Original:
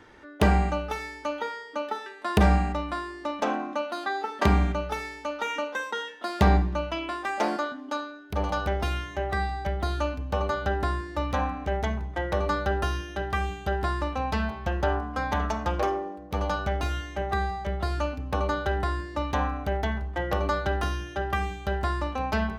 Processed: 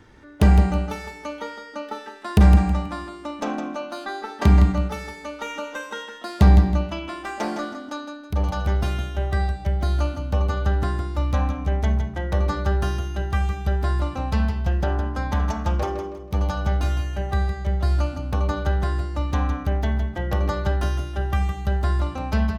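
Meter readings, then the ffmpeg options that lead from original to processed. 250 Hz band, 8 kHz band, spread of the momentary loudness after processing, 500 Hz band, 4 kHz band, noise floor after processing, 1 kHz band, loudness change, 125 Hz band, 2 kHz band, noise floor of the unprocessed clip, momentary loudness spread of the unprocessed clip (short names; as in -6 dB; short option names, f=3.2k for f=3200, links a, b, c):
+5.0 dB, +2.5 dB, 15 LU, -0.5 dB, 0.0 dB, -40 dBFS, -1.5 dB, +5.0 dB, +8.5 dB, -1.5 dB, -43 dBFS, 9 LU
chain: -af "bass=f=250:g=11,treble=f=4k:g=5,aecho=1:1:161|322|483|644:0.398|0.123|0.0383|0.0119,volume=-2.5dB"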